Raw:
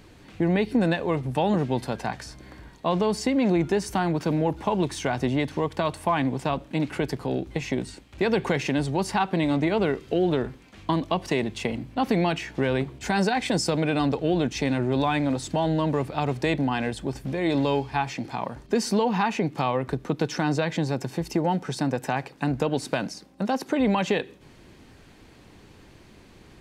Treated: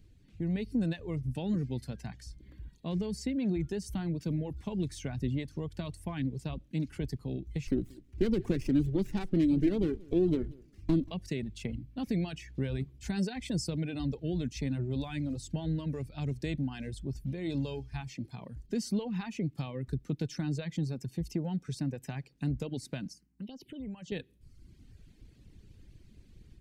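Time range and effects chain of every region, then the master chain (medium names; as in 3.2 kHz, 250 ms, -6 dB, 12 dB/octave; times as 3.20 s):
7.67–11.11 s: peaking EQ 320 Hz +10 dB 0.85 oct + feedback delay 183 ms, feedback 16%, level -14 dB + sliding maximum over 9 samples
23.13–24.12 s: peaking EQ 3 kHz +15 dB 0.22 oct + touch-sensitive phaser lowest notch 520 Hz, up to 3.5 kHz, full sweep at -18 dBFS + compression 2:1, threshold -37 dBFS
whole clip: reverb removal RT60 1 s; amplifier tone stack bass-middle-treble 10-0-1; level rider gain up to 6.5 dB; trim +4.5 dB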